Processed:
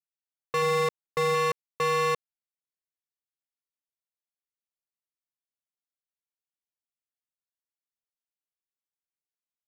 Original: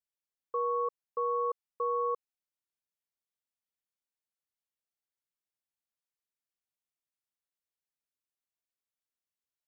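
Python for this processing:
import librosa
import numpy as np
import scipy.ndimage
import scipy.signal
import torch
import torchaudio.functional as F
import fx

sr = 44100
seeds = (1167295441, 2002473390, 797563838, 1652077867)

y = fx.peak_eq(x, sr, hz=290.0, db=3.5, octaves=2.2, at=(0.62, 1.35))
y = fx.leveller(y, sr, passes=5)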